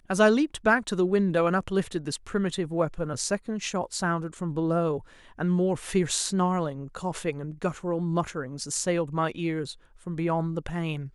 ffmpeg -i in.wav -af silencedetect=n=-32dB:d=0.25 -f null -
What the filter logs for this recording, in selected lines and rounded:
silence_start: 4.99
silence_end: 5.39 | silence_duration: 0.40
silence_start: 9.71
silence_end: 10.07 | silence_duration: 0.36